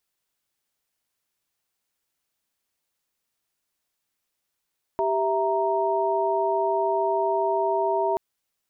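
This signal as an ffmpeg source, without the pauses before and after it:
-f lavfi -i "aevalsrc='0.0562*(sin(2*PI*392*t)+sin(2*PI*659.26*t)+sin(2*PI*932.33*t))':d=3.18:s=44100"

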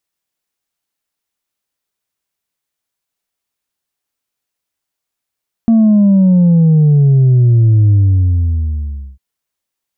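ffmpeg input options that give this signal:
-f lavfi -i "aevalsrc='0.501*clip((3.5-t)/1.26,0,1)*tanh(1.26*sin(2*PI*230*3.5/log(65/230)*(exp(log(65/230)*t/3.5)-1)))/tanh(1.26)':d=3.5:s=44100"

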